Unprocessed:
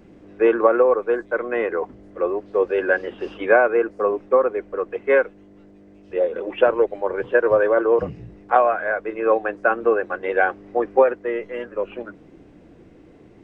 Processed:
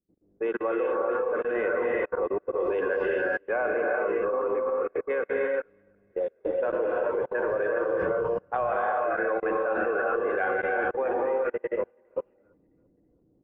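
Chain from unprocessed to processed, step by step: low-pass opened by the level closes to 460 Hz, open at -12.5 dBFS; non-linear reverb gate 0.44 s rising, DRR -2 dB; level quantiser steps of 24 dB; on a send: feedback echo 0.332 s, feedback 53%, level -22 dB; on the sum: upward expander 2.5:1, over -34 dBFS

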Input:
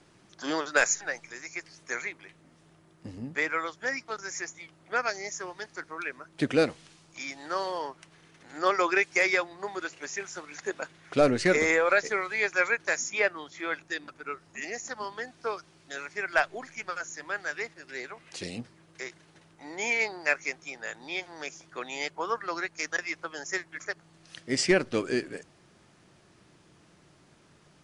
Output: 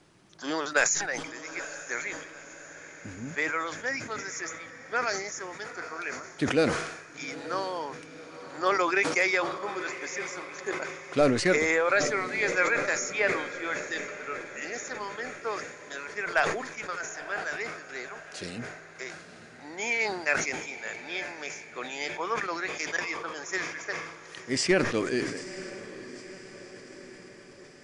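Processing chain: diffused feedback echo 0.919 s, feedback 59%, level -13.5 dB; sustainer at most 63 dB/s; gain -1 dB

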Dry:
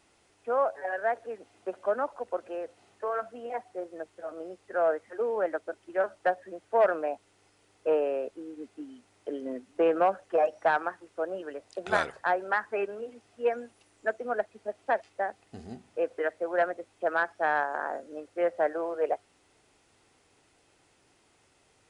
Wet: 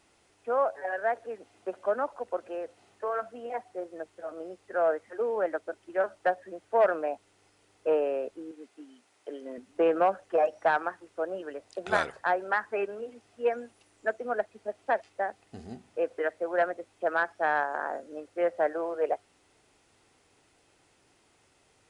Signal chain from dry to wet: 8.51–9.58 HPF 560 Hz 6 dB/oct

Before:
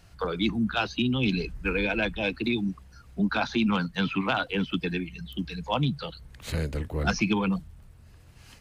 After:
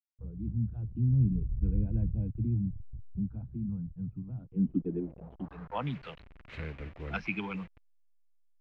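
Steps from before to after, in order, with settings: level-crossing sampler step -36.5 dBFS; Doppler pass-by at 1.91, 7 m/s, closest 4.9 m; low-pass sweep 110 Hz -> 2400 Hz, 4.26–5.97; gain +6 dB

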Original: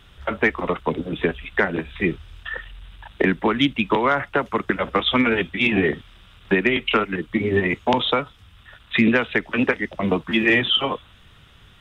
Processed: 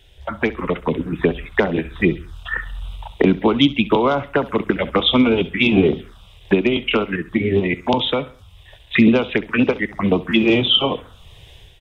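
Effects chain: AGC gain up to 11 dB; envelope phaser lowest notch 200 Hz, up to 1800 Hz, full sweep at -12.5 dBFS; on a send: feedback echo 67 ms, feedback 38%, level -18 dB; on the sum: gain +1 dB

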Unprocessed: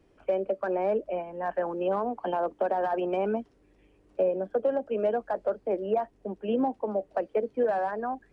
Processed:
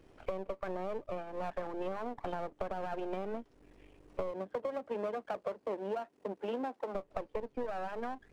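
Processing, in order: half-wave gain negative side -12 dB; 4.3–6.94 HPF 110 Hz -> 310 Hz 12 dB/oct; compressor 5:1, threshold -41 dBFS, peak gain reduction 16.5 dB; gain +6 dB

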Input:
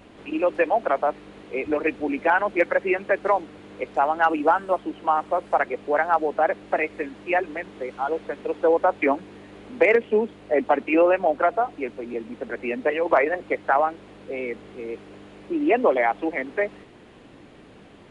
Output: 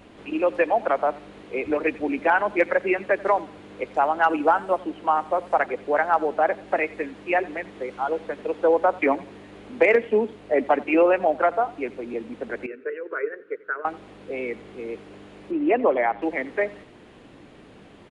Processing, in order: 12.66–13.85 double band-pass 790 Hz, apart 1.8 oct; 15.51–16.22 air absorption 280 m; feedback echo 88 ms, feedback 34%, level -21 dB

